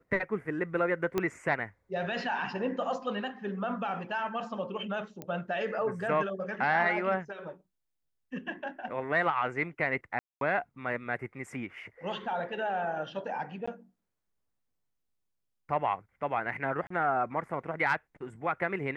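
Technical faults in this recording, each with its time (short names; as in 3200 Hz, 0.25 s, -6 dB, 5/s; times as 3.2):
1.18 pop -15 dBFS
5.22 pop -24 dBFS
10.19–10.41 gap 0.222 s
13.66–13.68 gap 15 ms
16.87–16.9 gap 34 ms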